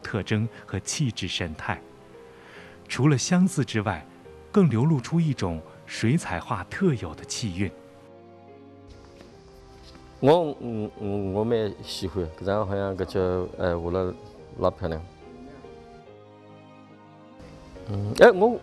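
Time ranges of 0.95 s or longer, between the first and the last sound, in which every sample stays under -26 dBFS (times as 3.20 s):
1.74–2.91 s
7.68–10.23 s
14.99–17.89 s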